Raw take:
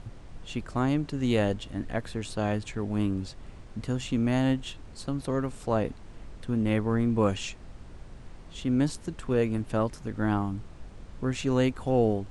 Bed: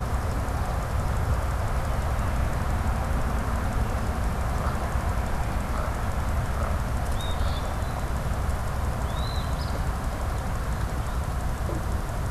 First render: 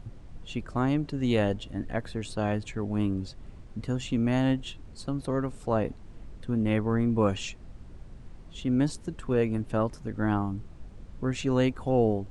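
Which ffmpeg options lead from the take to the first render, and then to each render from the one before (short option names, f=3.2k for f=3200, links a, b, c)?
-af "afftdn=nr=6:nf=-47"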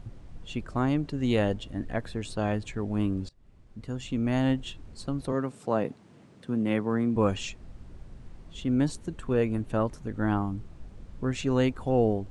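-filter_complex "[0:a]asettb=1/sr,asplit=3[a][b][c];[a]atrim=end=5.324[d];[b]atrim=start=5.32:end=7.16,asetpts=PTS-STARTPTS,afade=t=in:d=0.004:c=qsin,afade=t=out:st=1.836:d=0.004:c=qsin,highpass=f=130:w=0.5412,highpass=f=130:w=1.3066[e];[c]atrim=start=7.156[f];[d][e]acrossfade=d=0.004:c1=hsin:c2=qsin[g];[g][f]acrossfade=d=0.004:c1=qsin:c2=hsin,asettb=1/sr,asplit=3[h][i][j];[h]atrim=end=8.734[k];[i]atrim=start=8.73:end=10.37,asetpts=PTS-STARTPTS,afade=t=in:d=0.004:c=qsin,afade=t=out:st=1.636:d=0.004:c=qsin,bandreject=f=5.1k:w=12[l];[j]atrim=start=10.366[m];[k][l]acrossfade=d=0.004:c1=hsin:c2=qsin[n];[n][m]acrossfade=d=0.004:c1=qsin:c2=hsin,asplit=2[o][p];[o]atrim=end=3.29,asetpts=PTS-STARTPTS,afade=t=out:st=3.286:d=0.004:c=hsin:silence=0.0794328[q];[p]atrim=start=3.29,asetpts=PTS-STARTPTS,afade=t=in:d=1.16:silence=0.0794328[r];[q][r]concat=n=2:v=0:a=1"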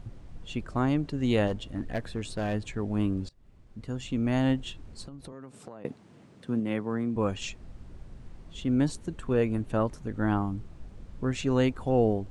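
-filter_complex "[0:a]asplit=3[a][b][c];[a]afade=t=out:st=1.46:d=0.02[d];[b]volume=24dB,asoftclip=hard,volume=-24dB,afade=t=in:st=1.46:d=0.02,afade=t=out:st=2.53:d=0.02[e];[c]afade=t=in:st=2.53:d=0.02[f];[d][e][f]amix=inputs=3:normalize=0,asettb=1/sr,asplit=3[g][h][i];[g]atrim=end=5.054[j];[h]atrim=start=5.05:end=5.85,asetpts=PTS-STARTPTS,afade=t=in:d=0.004:c=qsin,afade=t=out:st=0.796:d=0.004:c=qsin,acompressor=threshold=-39dB:ratio=12:attack=3.2:release=140:knee=1:detection=peak[k];[i]atrim=start=5.846[l];[j][k]acrossfade=d=0.004:c1=hsin:c2=qsin[m];[m][l]acrossfade=d=0.004:c1=qsin:c2=hsin,asplit=3[n][o][p];[n]atrim=end=6.602[q];[o]atrim=start=6.598:end=7.422,asetpts=PTS-STARTPTS,volume=-3.5dB[r];[p]atrim=start=7.418[s];[q][r]acrossfade=d=0.004:c1=hsin:c2=hsin[t];[t][s]acrossfade=d=0.004:c1=hsin:c2=hsin"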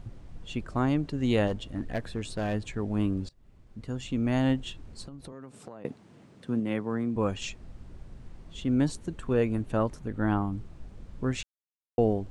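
-filter_complex "[0:a]asettb=1/sr,asplit=3[a][b][c];[a]atrim=end=9.994[d];[b]atrim=start=9.99:end=10.53,asetpts=PTS-STARTPTS,afade=t=in:d=0.004:c=qsin,afade=t=out:st=0.536:d=0.004:c=qsin,equalizer=f=6.2k:w=1.5:g=-5[e];[c]atrim=start=10.526[f];[d][e]acrossfade=d=0.004:c1=hsin:c2=qsin[g];[g][f]acrossfade=d=0.004:c1=qsin:c2=hsin,asplit=3[h][i][j];[h]atrim=end=11.43,asetpts=PTS-STARTPTS,afade=t=out:st=11.426:d=0.004:c=hsin[k];[i]atrim=start=11.43:end=11.98,asetpts=PTS-STARTPTS,volume=0[l];[j]atrim=start=11.98,asetpts=PTS-STARTPTS,afade=t=in:d=0.004:c=hsin[m];[k][l][m]concat=n=3:v=0:a=1"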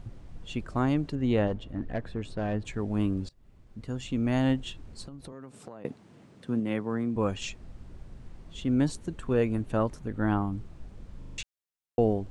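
-filter_complex "[0:a]asettb=1/sr,asplit=3[a][b][c];[a]atrim=end=1.154[d];[b]atrim=start=1.15:end=2.65,asetpts=PTS-STARTPTS,afade=t=in:d=0.004:c=qsin,afade=t=out:st=1.496:d=0.004:c=qsin,lowpass=f=1.8k:p=1[e];[c]atrim=start=2.646[f];[d][e]acrossfade=d=0.004:c1=hsin:c2=qsin[g];[g][f]acrossfade=d=0.004:c1=qsin:c2=hsin,asplit=6[h][i][j][k][l][m];[h]atrim=end=11.222[n];[i]atrim=start=11.178:end=11.222[o];[j]atrim=start=11.178:end=11.222[p];[k]atrim=start=11.178:end=11.222[q];[l]atrim=start=11.178:end=11.222[r];[m]atrim=start=11.378[s];[n][o]acrossfade=d=0.004:c1=hsin:c2=hsin[t];[t][p]acrossfade=d=0.004:c1=hsin:c2=hsin[u];[u][q]acrossfade=d=0.004:c1=hsin:c2=hsin[v];[v][r]acrossfade=d=0.004:c1=hsin:c2=hsin[w];[w][s]acrossfade=d=0.004:c1=hsin:c2=hsin"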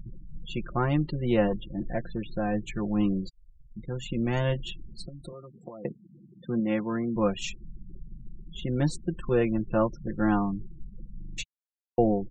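-af "afftfilt=real='re*gte(hypot(re,im),0.00891)':imag='im*gte(hypot(re,im),0.00891)':win_size=1024:overlap=0.75,aecho=1:1:5.7:0.86"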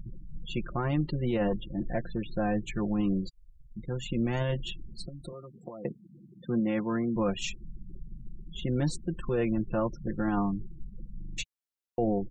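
-af "alimiter=limit=-20dB:level=0:latency=1:release=14"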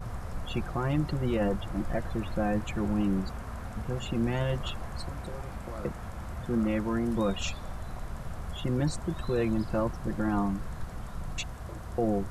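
-filter_complex "[1:a]volume=-12dB[a];[0:a][a]amix=inputs=2:normalize=0"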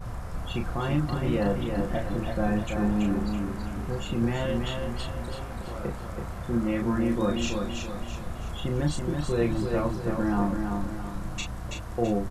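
-filter_complex "[0:a]asplit=2[a][b];[b]adelay=34,volume=-4.5dB[c];[a][c]amix=inputs=2:normalize=0,aecho=1:1:330|660|990|1320|1650:0.562|0.247|0.109|0.0479|0.0211"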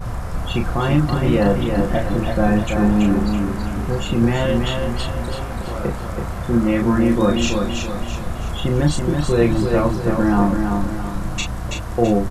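-af "volume=9.5dB"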